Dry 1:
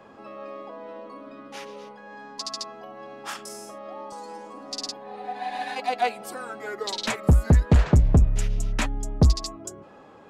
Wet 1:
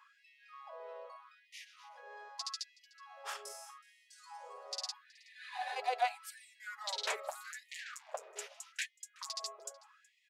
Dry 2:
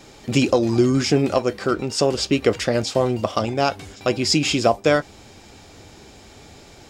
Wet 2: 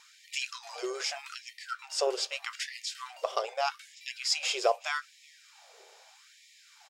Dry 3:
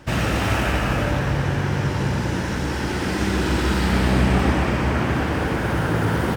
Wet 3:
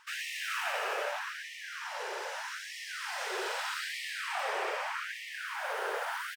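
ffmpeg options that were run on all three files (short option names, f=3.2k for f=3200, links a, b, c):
-filter_complex "[0:a]asplit=2[a][b];[b]aecho=0:1:372:0.0631[c];[a][c]amix=inputs=2:normalize=0,afftfilt=real='re*gte(b*sr/1024,360*pow(1800/360,0.5+0.5*sin(2*PI*0.81*pts/sr)))':imag='im*gte(b*sr/1024,360*pow(1800/360,0.5+0.5*sin(2*PI*0.81*pts/sr)))':win_size=1024:overlap=0.75,volume=-8dB"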